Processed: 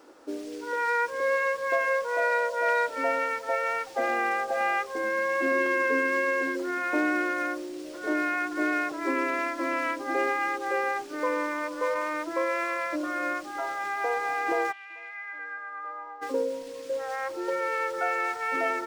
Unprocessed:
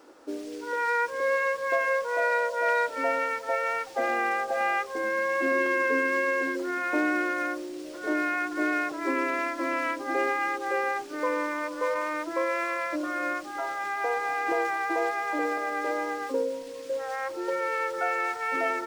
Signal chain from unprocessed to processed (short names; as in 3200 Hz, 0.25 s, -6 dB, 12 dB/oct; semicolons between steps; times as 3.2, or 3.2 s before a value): 14.71–16.21 band-pass 3000 Hz -> 940 Hz, Q 5